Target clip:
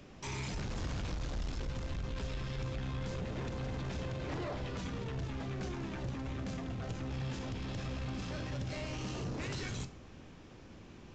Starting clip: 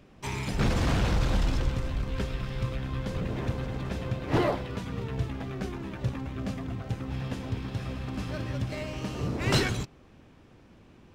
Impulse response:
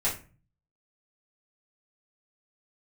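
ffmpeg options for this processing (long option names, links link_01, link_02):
-filter_complex "[0:a]acrossover=split=170[link_01][link_02];[link_02]acompressor=threshold=-31dB:ratio=2[link_03];[link_01][link_03]amix=inputs=2:normalize=0,crystalizer=i=1.5:c=0,acompressor=threshold=-27dB:ratio=6,aresample=16000,asoftclip=type=tanh:threshold=-32dB,aresample=44100,alimiter=level_in=12dB:limit=-24dB:level=0:latency=1:release=13,volume=-12dB,asplit=2[link_04][link_05];[1:a]atrim=start_sample=2205,asetrate=35280,aresample=44100,adelay=12[link_06];[link_05][link_06]afir=irnorm=-1:irlink=0,volume=-19.5dB[link_07];[link_04][link_07]amix=inputs=2:normalize=0,volume=1dB"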